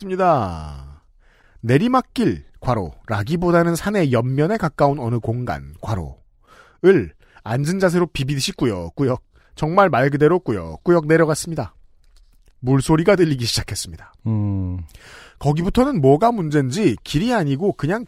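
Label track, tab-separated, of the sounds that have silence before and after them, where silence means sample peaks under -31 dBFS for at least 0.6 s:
1.640000	6.120000	sound
6.830000	11.680000	sound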